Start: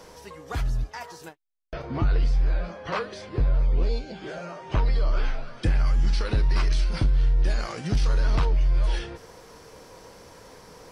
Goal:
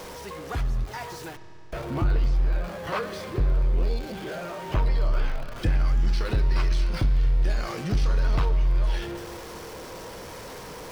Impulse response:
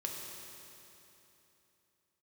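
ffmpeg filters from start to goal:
-filter_complex "[0:a]aeval=exprs='val(0)+0.5*0.0188*sgn(val(0))':c=same,asplit=2[a][b];[1:a]atrim=start_sample=2205,lowpass=4.7k[c];[b][c]afir=irnorm=-1:irlink=0,volume=-7.5dB[d];[a][d]amix=inputs=2:normalize=0,volume=-4dB"

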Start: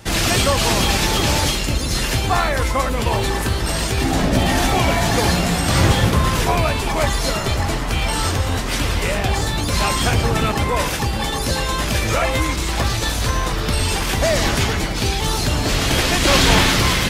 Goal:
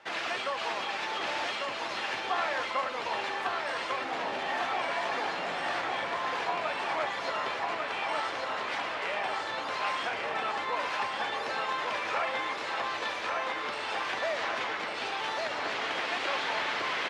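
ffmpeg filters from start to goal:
-af "acompressor=threshold=-17dB:ratio=6,highpass=670,lowpass=2.5k,aecho=1:1:1147|2294|3441|4588|5735|6882|8029:0.668|0.341|0.174|0.0887|0.0452|0.0231|0.0118,volume=-6dB"

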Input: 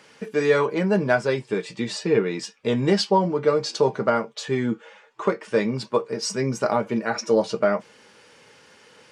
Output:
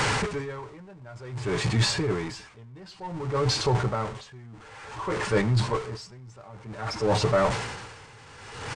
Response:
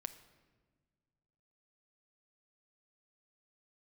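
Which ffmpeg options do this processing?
-filter_complex "[0:a]aeval=exprs='val(0)+0.5*0.0668*sgn(val(0))':c=same,lowshelf=f=160:t=q:w=3:g=11,areverse,acompressor=threshold=-22dB:ratio=16,areverse,equalizer=f=250:t=o:w=1:g=9,equalizer=f=1k:t=o:w=1:g=8,equalizer=f=2k:t=o:w=1:g=3,asplit=2[a][b];[b]adelay=111,lowpass=f=4.7k:p=1,volume=-20.5dB,asplit=2[c][d];[d]adelay=111,lowpass=f=4.7k:p=1,volume=0.26[e];[c][e]amix=inputs=2:normalize=0[f];[a][f]amix=inputs=2:normalize=0,asetrate=45938,aresample=44100,aresample=22050,aresample=44100,asetrate=40440,aresample=44100,atempo=1.09051,aeval=exprs='0.316*(cos(1*acos(clip(val(0)/0.316,-1,1)))-cos(1*PI/2))+0.0398*(cos(2*acos(clip(val(0)/0.316,-1,1)))-cos(2*PI/2))+0.0141*(cos(5*acos(clip(val(0)/0.316,-1,1)))-cos(5*PI/2))+0.00251*(cos(7*acos(clip(val(0)/0.316,-1,1)))-cos(7*PI/2))':c=same,aeval=exprs='val(0)*pow(10,-25*(0.5-0.5*cos(2*PI*0.55*n/s))/20)':c=same"

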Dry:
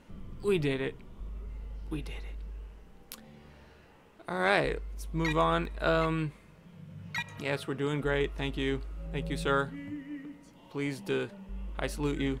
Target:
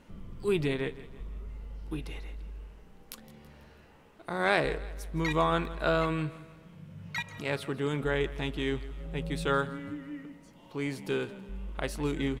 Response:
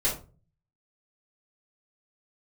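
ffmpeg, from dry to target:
-af "aecho=1:1:164|328|492|656:0.133|0.0627|0.0295|0.0138"

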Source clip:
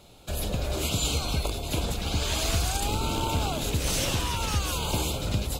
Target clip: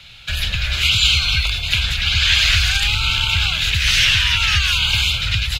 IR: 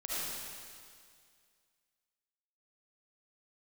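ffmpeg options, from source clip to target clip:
-filter_complex "[0:a]firequalizer=gain_entry='entry(110,0);entry(290,-19);entry(1100,-5);entry(1600,12);entry(2800,12);entry(8400,-9)':delay=0.05:min_phase=1,acrossover=split=130|970|6600[a][b][c][d];[b]acompressor=threshold=-47dB:ratio=4[e];[a][e][c][d]amix=inputs=4:normalize=0,volume=8dB"

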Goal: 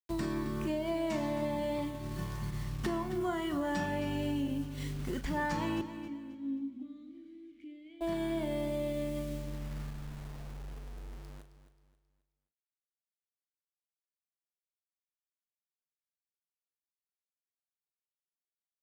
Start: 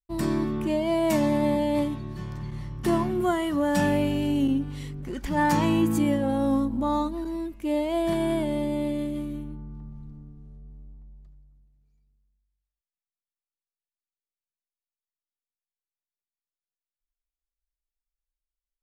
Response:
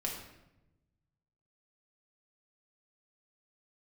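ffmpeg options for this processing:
-filter_complex "[0:a]lowpass=9.1k,equalizer=f=1.5k:t=o:w=0.99:g=2.5,acrossover=split=6800[a][b];[b]acompressor=threshold=-57dB:ratio=4:attack=1:release=60[c];[a][c]amix=inputs=2:normalize=0,highshelf=f=5.4k:g=5.5,acrusher=bits=7:mix=0:aa=0.000001,asplit=2[d][e];[e]adelay=39,volume=-9.5dB[f];[d][f]amix=inputs=2:normalize=0,acompressor=threshold=-39dB:ratio=4,asettb=1/sr,asplit=3[g][h][i];[g]atrim=end=5.814[j];[h]atrim=start=5.81:end=8.01,asetpts=PTS-STARTPTS,afade=t=in:d=0.004:c=qsin,afade=t=out:st=2.196:d=0.004:c=qsin,asplit=3[k][l][m];[k]bandpass=f=270:t=q:w=8,volume=0dB[n];[l]bandpass=f=2.29k:t=q:w=8,volume=-6dB[o];[m]bandpass=f=3.01k:t=q:w=8,volume=-9dB[p];[n][o][p]amix=inputs=3:normalize=0[q];[i]atrim=start=8.006[r];[j][q]acrossfade=d=0.004:c1=hsin:c2=qsin[s];[s][r]acrossfade=d=0.004:c1=qsin:c2=hsin,agate=range=-6dB:threshold=-41dB:ratio=16:detection=peak,aecho=1:1:267|534|801|1068:0.237|0.083|0.029|0.0102,volume=4.5dB"

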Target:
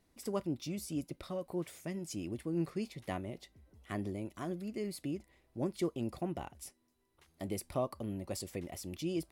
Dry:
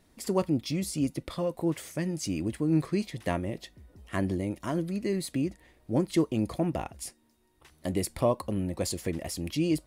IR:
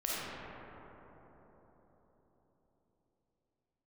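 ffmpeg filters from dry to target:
-af "asetrate=46746,aresample=44100,volume=-9dB"

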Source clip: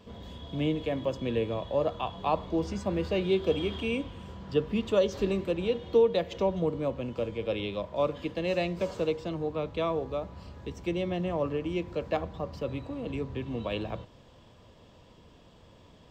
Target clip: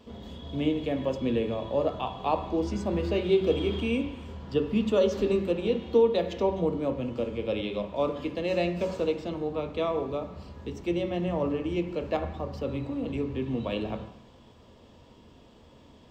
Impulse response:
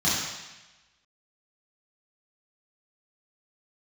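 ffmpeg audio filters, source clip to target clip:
-filter_complex "[0:a]asplit=2[a][b];[1:a]atrim=start_sample=2205,asetrate=57330,aresample=44100,lowpass=2.9k[c];[b][c]afir=irnorm=-1:irlink=0,volume=-17.5dB[d];[a][d]amix=inputs=2:normalize=0"

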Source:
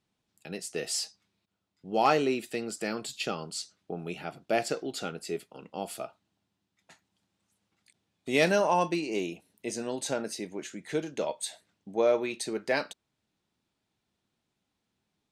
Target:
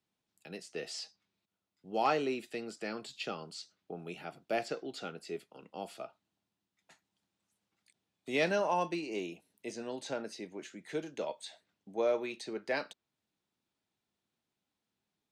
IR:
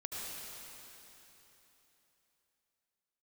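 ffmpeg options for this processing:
-filter_complex "[0:a]lowshelf=f=120:g=-7.5,acrossover=split=160|620|5900[a][b][c][d];[d]acompressor=threshold=-57dB:ratio=6[e];[a][b][c][e]amix=inputs=4:normalize=0,volume=-5.5dB"

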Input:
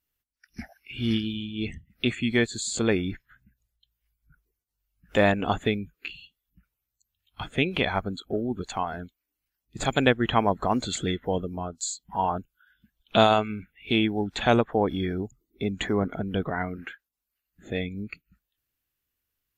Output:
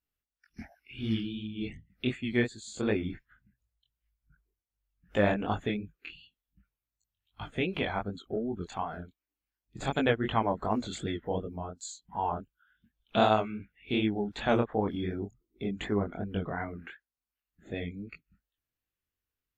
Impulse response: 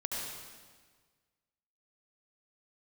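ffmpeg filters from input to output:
-filter_complex "[0:a]asplit=3[a][b][c];[a]afade=t=out:st=2.09:d=0.02[d];[b]agate=range=-33dB:threshold=-27dB:ratio=3:detection=peak,afade=t=in:st=2.09:d=0.02,afade=t=out:st=2.96:d=0.02[e];[c]afade=t=in:st=2.96:d=0.02[f];[d][e][f]amix=inputs=3:normalize=0,highshelf=f=3.5k:g=-7.5,flanger=delay=18.5:depth=6.3:speed=2.7,volume=-2dB"

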